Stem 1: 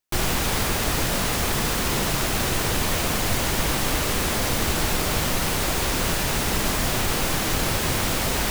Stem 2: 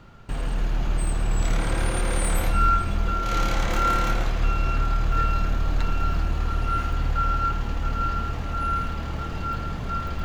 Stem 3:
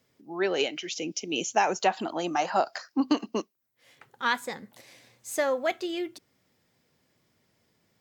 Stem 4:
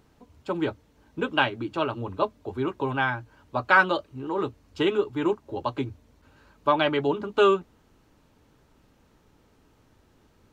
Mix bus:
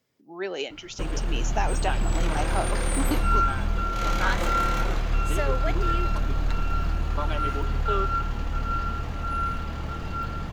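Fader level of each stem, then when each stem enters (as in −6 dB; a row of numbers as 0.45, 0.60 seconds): muted, −2.0 dB, −4.5 dB, −11.5 dB; muted, 0.70 s, 0.00 s, 0.50 s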